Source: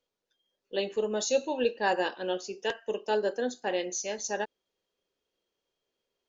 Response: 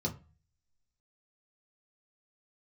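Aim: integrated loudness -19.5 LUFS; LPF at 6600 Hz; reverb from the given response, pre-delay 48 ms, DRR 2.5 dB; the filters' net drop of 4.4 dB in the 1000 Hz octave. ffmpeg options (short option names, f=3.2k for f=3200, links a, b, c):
-filter_complex "[0:a]lowpass=6.6k,equalizer=f=1k:t=o:g=-6,asplit=2[a][b];[1:a]atrim=start_sample=2205,adelay=48[c];[b][c]afir=irnorm=-1:irlink=0,volume=-6dB[d];[a][d]amix=inputs=2:normalize=0,volume=8.5dB"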